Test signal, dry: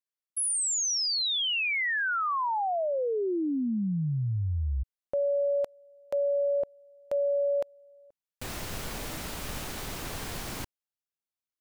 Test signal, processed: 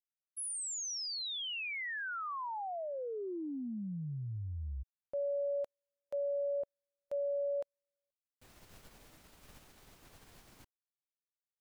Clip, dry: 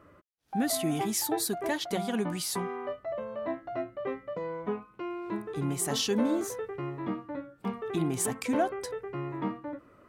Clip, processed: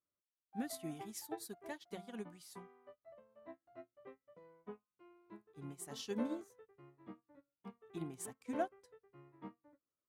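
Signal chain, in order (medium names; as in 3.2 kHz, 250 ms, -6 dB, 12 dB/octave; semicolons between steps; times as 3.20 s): upward expansion 2.5:1, over -46 dBFS; trim -8 dB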